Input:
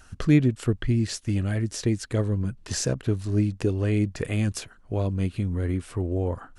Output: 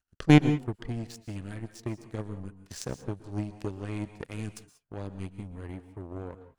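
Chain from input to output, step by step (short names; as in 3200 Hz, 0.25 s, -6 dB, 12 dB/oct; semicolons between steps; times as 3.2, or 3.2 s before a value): in parallel at -1 dB: level quantiser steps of 17 dB; on the sum: power-law curve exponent 2; reverb, pre-delay 0.108 s, DRR 12.5 dB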